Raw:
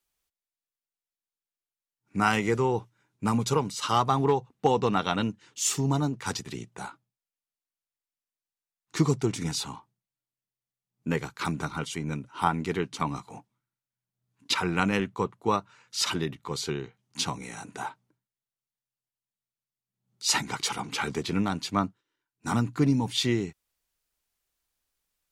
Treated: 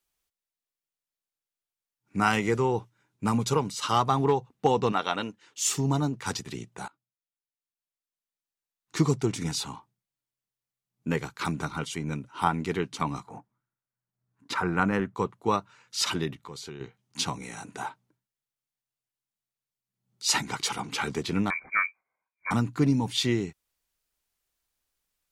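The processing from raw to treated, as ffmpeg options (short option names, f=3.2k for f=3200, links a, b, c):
-filter_complex "[0:a]asettb=1/sr,asplit=3[a][b][c];[a]atrim=end=4.924[d];[b]atrim=start=4.92:end=5.59,asetpts=PTS-STARTPTS,afade=t=in:d=0.004:c=qsin,afade=t=out:st=0.666:d=0.004:c=qsin,bass=f=250:g=-13,treble=f=4k:g=-2[e];[c]atrim=start=5.586[f];[d][e]acrossfade=d=0.004:c1=hsin:c2=qsin[g];[g][f]acrossfade=d=0.004:c1=qsin:c2=hsin,asettb=1/sr,asplit=3[h][i][j];[h]atrim=end=13.234[k];[i]atrim=start=13.23:end=15.15,asetpts=PTS-STARTPTS,afade=t=in:d=0.004:c=qsin,afade=t=out:st=1.916:d=0.004:c=qsin,highshelf=f=2.1k:t=q:w=1.5:g=-8[l];[j]atrim=start=15.146[m];[k][l]acrossfade=d=0.004:c1=hsin:c2=qsin[n];[n][m]acrossfade=d=0.004:c1=qsin:c2=hsin,asettb=1/sr,asplit=3[o][p][q];[o]atrim=end=16.374[r];[p]atrim=start=16.37:end=16.81,asetpts=PTS-STARTPTS,afade=t=in:d=0.004:c=qsin,afade=t=out:st=0.436:d=0.004:c=qsin,acompressor=threshold=-41dB:ratio=2.5:attack=3.2:release=140:knee=1:detection=peak[s];[q]atrim=start=16.806[t];[r][s]acrossfade=d=0.004:c1=hsin:c2=qsin[u];[u][t]acrossfade=d=0.004:c1=qsin:c2=hsin,asettb=1/sr,asplit=3[v][w][x];[v]atrim=end=21.504[y];[w]atrim=start=21.5:end=22.51,asetpts=PTS-STARTPTS,afade=t=in:d=0.004:c=qsin,afade=t=out:st=1.006:d=0.004:c=qsin,lowpass=f=2.1k:t=q:w=0.5098,lowpass=f=2.1k:t=q:w=0.6013,lowpass=f=2.1k:t=q:w=0.9,lowpass=f=2.1k:t=q:w=2.563,afreqshift=-2500[z];[x]atrim=start=22.506[aa];[y][z]acrossfade=d=0.004:c1=hsin:c2=qsin[ab];[ab][aa]acrossfade=d=0.004:c1=qsin:c2=hsin,asplit=2[ac][ad];[ac]atrim=end=6.88,asetpts=PTS-STARTPTS,afade=t=out:st=6.876:d=0.004:c=hsin:silence=0.11885[ae];[ad]atrim=start=6.88,asetpts=PTS-STARTPTS,afade=t=in:d=2.08:silence=0.11885[af];[ae][af]concat=n=2:v=0:a=1"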